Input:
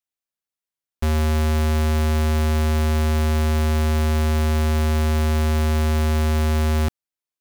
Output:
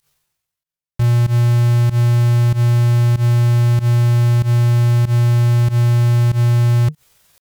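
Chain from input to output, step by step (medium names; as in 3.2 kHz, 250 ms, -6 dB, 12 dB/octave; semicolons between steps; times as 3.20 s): resonant low shelf 120 Hz +6 dB, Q 3; reverse; upward compressor, threshold -19 dBFS; reverse; pitch shift +7.5 st; volume shaper 95 bpm, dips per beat 1, -20 dB, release 107 ms; trim -2.5 dB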